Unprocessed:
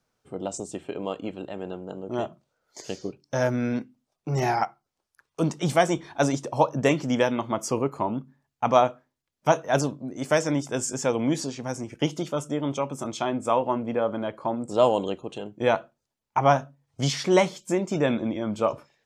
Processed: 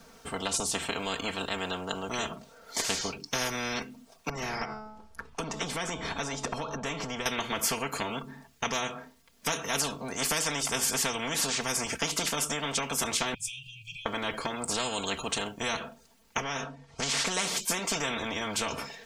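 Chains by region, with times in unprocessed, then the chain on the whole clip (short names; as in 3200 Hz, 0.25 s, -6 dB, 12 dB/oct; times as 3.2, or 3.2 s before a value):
4.29–7.26 tilt -3.5 dB/oct + de-hum 215.3 Hz, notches 36 + compressor 4:1, threshold -33 dBFS
13.34–14.06 passive tone stack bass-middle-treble 5-5-5 + compressor 2.5:1, threshold -46 dBFS + brick-wall FIR band-stop 160–2300 Hz
16.41–17.27 LPF 6100 Hz + compressor 10:1, threshold -29 dBFS
whole clip: compressor 3:1, threshold -26 dBFS; comb 4.4 ms, depth 82%; spectral compressor 4:1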